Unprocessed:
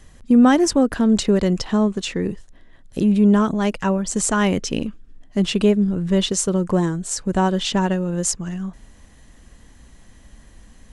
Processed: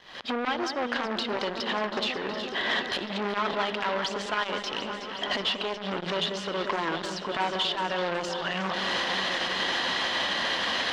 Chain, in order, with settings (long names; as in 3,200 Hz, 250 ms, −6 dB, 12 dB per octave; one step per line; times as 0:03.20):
camcorder AGC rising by 62 dB per second
high-pass filter 760 Hz 12 dB per octave
flat-topped bell 3,900 Hz +8.5 dB 1 octave
downward compressor 6 to 1, threshold −30 dBFS, peak gain reduction 19 dB
leveller curve on the samples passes 3
high-frequency loss of the air 270 metres
delay that swaps between a low-pass and a high-pass 184 ms, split 2,300 Hz, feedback 89%, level −9.5 dB
on a send at −17 dB: convolution reverb RT60 2.6 s, pre-delay 48 ms
on the sum: saturating transformer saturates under 1,500 Hz